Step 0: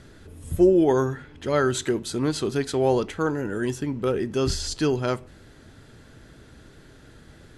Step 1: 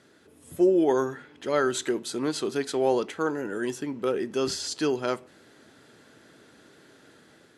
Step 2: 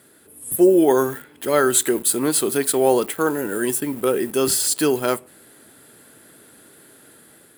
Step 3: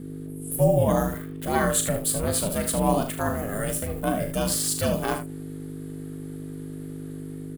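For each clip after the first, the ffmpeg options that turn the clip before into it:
ffmpeg -i in.wav -af "highpass=250,dynaudnorm=framelen=210:gausssize=5:maxgain=4.5dB,volume=-6dB" out.wav
ffmpeg -i in.wav -filter_complex "[0:a]asplit=2[link_01][link_02];[link_02]aeval=exprs='val(0)*gte(abs(val(0)),0.0106)':channel_layout=same,volume=-5.5dB[link_03];[link_01][link_03]amix=inputs=2:normalize=0,aexciter=amount=9.9:drive=5.8:freq=8500,volume=3dB" out.wav
ffmpeg -i in.wav -af "aeval=exprs='val(0)+0.0316*(sin(2*PI*50*n/s)+sin(2*PI*2*50*n/s)/2+sin(2*PI*3*50*n/s)/3+sin(2*PI*4*50*n/s)/4+sin(2*PI*5*50*n/s)/5)':channel_layout=same,aeval=exprs='val(0)*sin(2*PI*210*n/s)':channel_layout=same,aecho=1:1:39|76:0.376|0.335,volume=-3.5dB" out.wav

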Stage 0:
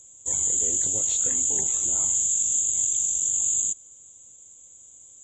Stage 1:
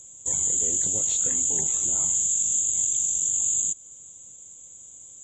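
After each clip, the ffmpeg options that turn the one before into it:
ffmpeg -i in.wav -filter_complex "[0:a]equalizer=frequency=170:width_type=o:width=0.57:gain=5.5,asplit=2[link_01][link_02];[link_02]acompressor=threshold=-32dB:ratio=6,volume=0dB[link_03];[link_01][link_03]amix=inputs=2:normalize=0,volume=-2.5dB" out.wav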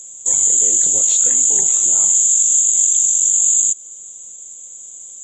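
ffmpeg -i in.wav -af "bass=frequency=250:gain=-10,treble=frequency=4000:gain=4,volume=6.5dB" out.wav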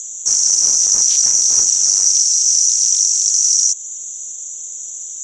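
ffmpeg -i in.wav -af "aeval=exprs='0.75*sin(PI/2*5.62*val(0)/0.75)':channel_layout=same,lowpass=frequency=5800:width_type=q:width=16,volume=-17.5dB" out.wav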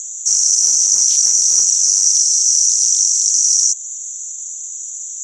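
ffmpeg -i in.wav -af "crystalizer=i=2:c=0,volume=-7dB" out.wav

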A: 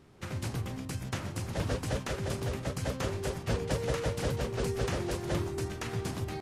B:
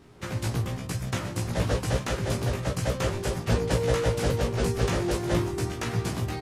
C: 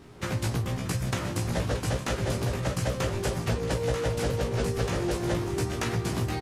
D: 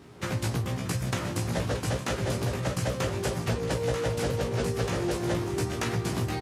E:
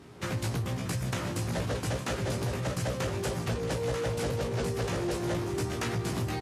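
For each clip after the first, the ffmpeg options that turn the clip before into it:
ffmpeg -i in.wav -filter_complex "[0:a]asplit=2[link_01][link_02];[link_02]adelay=17,volume=-3dB[link_03];[link_01][link_03]amix=inputs=2:normalize=0,volume=4dB" out.wav
ffmpeg -i in.wav -af "acompressor=threshold=-28dB:ratio=6,aecho=1:1:628:0.224,volume=3.5dB" out.wav
ffmpeg -i in.wav -af "highpass=71" out.wav
ffmpeg -i in.wav -af "asoftclip=type=tanh:threshold=-23.5dB" -ar 32000 -c:a libmp3lame -b:a 96k out.mp3

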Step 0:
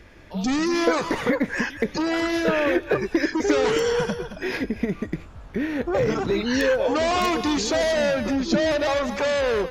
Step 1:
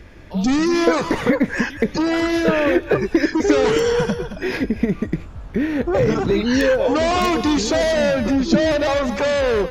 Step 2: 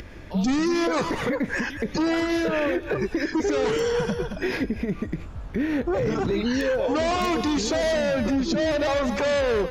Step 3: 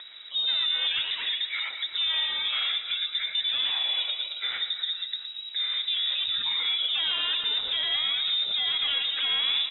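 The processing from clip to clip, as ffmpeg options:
ffmpeg -i in.wav -af "lowshelf=frequency=330:gain=5.5,volume=2.5dB" out.wav
ffmpeg -i in.wav -af "acompressor=mode=upward:threshold=-34dB:ratio=2.5,alimiter=limit=-15dB:level=0:latency=1:release=93,volume=-1.5dB" out.wav
ffmpeg -i in.wav -af "lowpass=frequency=3300:width_type=q:width=0.5098,lowpass=frequency=3300:width_type=q:width=0.6013,lowpass=frequency=3300:width_type=q:width=0.9,lowpass=frequency=3300:width_type=q:width=2.563,afreqshift=-3900,aecho=1:1:116|232|348|464|580:0.299|0.149|0.0746|0.0373|0.0187,volume=-4.5dB" out.wav

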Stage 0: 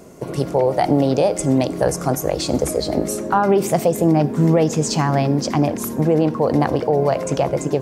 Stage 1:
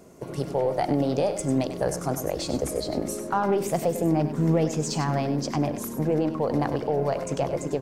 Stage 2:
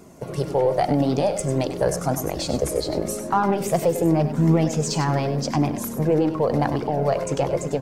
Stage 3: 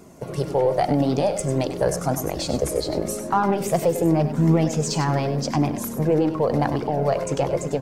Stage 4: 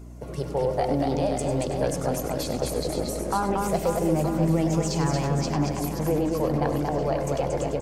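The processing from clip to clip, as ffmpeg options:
ffmpeg -i in.wav -af "aeval=exprs='0.562*(cos(1*acos(clip(val(0)/0.562,-1,1)))-cos(1*PI/2))+0.00891*(cos(8*acos(clip(val(0)/0.562,-1,1)))-cos(8*PI/2))':channel_layout=same,aecho=1:1:98:0.316,volume=-8dB" out.wav
ffmpeg -i in.wav -af "flanger=delay=0.8:depth=1.6:regen=-50:speed=0.88:shape=triangular,volume=8dB" out.wav
ffmpeg -i in.wav -af anull out.wav
ffmpeg -i in.wav -filter_complex "[0:a]aeval=exprs='val(0)+0.0178*(sin(2*PI*60*n/s)+sin(2*PI*2*60*n/s)/2+sin(2*PI*3*60*n/s)/3+sin(2*PI*4*60*n/s)/4+sin(2*PI*5*60*n/s)/5)':channel_layout=same,asplit=2[link_01][link_02];[link_02]aecho=0:1:230|529|917.7|1423|2080:0.631|0.398|0.251|0.158|0.1[link_03];[link_01][link_03]amix=inputs=2:normalize=0,volume=-5.5dB" out.wav

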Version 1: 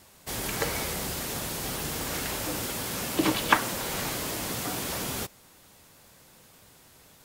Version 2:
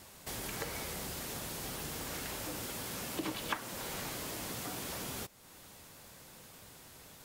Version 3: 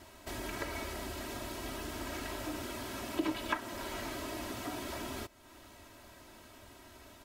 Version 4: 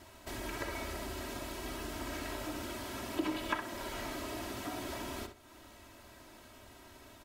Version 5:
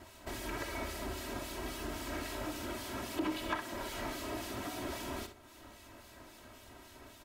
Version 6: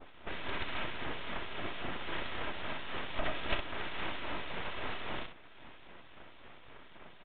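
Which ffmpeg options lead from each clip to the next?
ffmpeg -i in.wav -af "acompressor=threshold=-47dB:ratio=2,volume=1dB" out.wav
ffmpeg -i in.wav -af "highshelf=frequency=4300:gain=-11.5,aecho=1:1:3.1:0.82,volume=1dB" out.wav
ffmpeg -i in.wav -filter_complex "[0:a]asplit=2[link_01][link_02];[link_02]adelay=64,lowpass=frequency=4500:poles=1,volume=-7.5dB,asplit=2[link_03][link_04];[link_04]adelay=64,lowpass=frequency=4500:poles=1,volume=0.25,asplit=2[link_05][link_06];[link_06]adelay=64,lowpass=frequency=4500:poles=1,volume=0.25[link_07];[link_01][link_03][link_05][link_07]amix=inputs=4:normalize=0,volume=-1dB" out.wav
ffmpeg -i in.wav -filter_complex "[0:a]asoftclip=type=tanh:threshold=-28dB,acrossover=split=2300[link_01][link_02];[link_01]aeval=exprs='val(0)*(1-0.5/2+0.5/2*cos(2*PI*3.7*n/s))':channel_layout=same[link_03];[link_02]aeval=exprs='val(0)*(1-0.5/2-0.5/2*cos(2*PI*3.7*n/s))':channel_layout=same[link_04];[link_03][link_04]amix=inputs=2:normalize=0,volume=3dB" out.wav
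ffmpeg -i in.wav -af "adynamicequalizer=threshold=0.00178:dfrequency=2100:dqfactor=1:tfrequency=2100:tqfactor=1:attack=5:release=100:ratio=0.375:range=2.5:mode=boostabove:tftype=bell,aeval=exprs='abs(val(0))':channel_layout=same,aresample=8000,aresample=44100,volume=4dB" out.wav

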